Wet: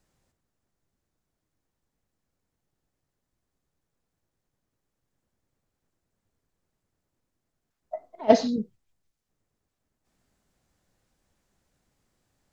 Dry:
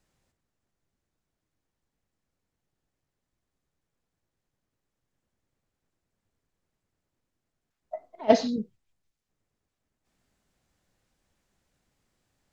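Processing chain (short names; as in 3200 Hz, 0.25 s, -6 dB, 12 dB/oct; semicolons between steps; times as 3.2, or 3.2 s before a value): bell 2700 Hz -3 dB 1.5 oct; gain +2 dB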